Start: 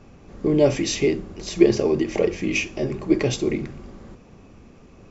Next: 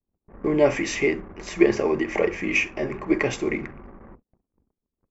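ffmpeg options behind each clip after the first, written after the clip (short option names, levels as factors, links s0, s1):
-af "anlmdn=0.0631,agate=range=0.0251:threshold=0.00631:ratio=16:detection=peak,equalizer=f=125:t=o:w=1:g=-5,equalizer=f=1000:t=o:w=1:g=7,equalizer=f=2000:t=o:w=1:g=11,equalizer=f=4000:t=o:w=1:g=-8,volume=0.708"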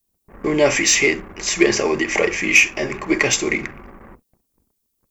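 -filter_complex "[0:a]crystalizer=i=7.5:c=0,asplit=2[s0][s1];[s1]acontrast=76,volume=0.708[s2];[s0][s2]amix=inputs=2:normalize=0,volume=0.501"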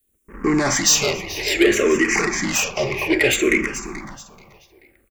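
-filter_complex "[0:a]asoftclip=type=tanh:threshold=0.168,aecho=1:1:433|866|1299:0.224|0.0694|0.0215,asplit=2[s0][s1];[s1]afreqshift=-0.6[s2];[s0][s2]amix=inputs=2:normalize=1,volume=2.11"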